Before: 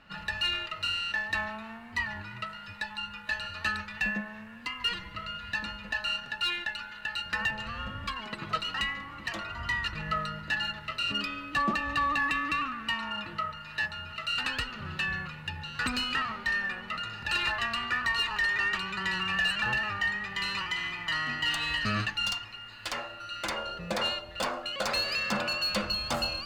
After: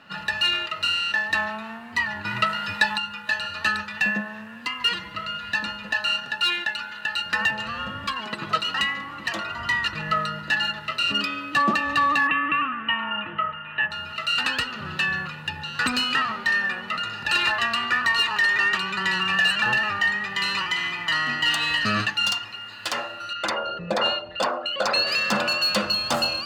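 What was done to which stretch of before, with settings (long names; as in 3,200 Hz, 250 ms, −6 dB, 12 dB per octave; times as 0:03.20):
0:02.25–0:02.98: clip gain +8 dB
0:12.27–0:13.91: elliptic low-pass filter 3,100 Hz
0:23.33–0:25.07: spectral envelope exaggerated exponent 1.5
whole clip: Bessel high-pass filter 160 Hz, order 2; notch filter 2,200 Hz, Q 12; level +7.5 dB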